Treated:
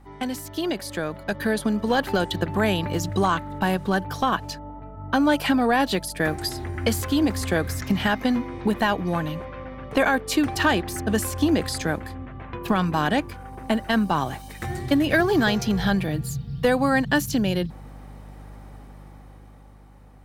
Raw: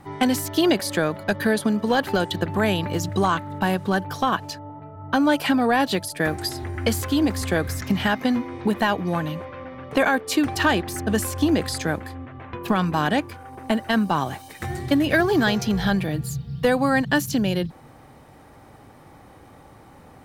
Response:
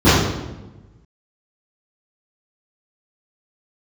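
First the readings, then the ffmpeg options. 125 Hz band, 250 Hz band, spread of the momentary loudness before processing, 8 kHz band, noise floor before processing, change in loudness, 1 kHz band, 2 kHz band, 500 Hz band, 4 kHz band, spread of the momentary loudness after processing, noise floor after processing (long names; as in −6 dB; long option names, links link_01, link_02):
−0.5 dB, −1.0 dB, 11 LU, −1.5 dB, −48 dBFS, −1.0 dB, −1.0 dB, −1.0 dB, −1.0 dB, −1.0 dB, 12 LU, −45 dBFS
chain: -af "aeval=exprs='val(0)+0.01*(sin(2*PI*50*n/s)+sin(2*PI*2*50*n/s)/2+sin(2*PI*3*50*n/s)/3+sin(2*PI*4*50*n/s)/4+sin(2*PI*5*50*n/s)/5)':channel_layout=same,dynaudnorm=framelen=130:gausssize=21:maxgain=11.5dB,volume=-8.5dB"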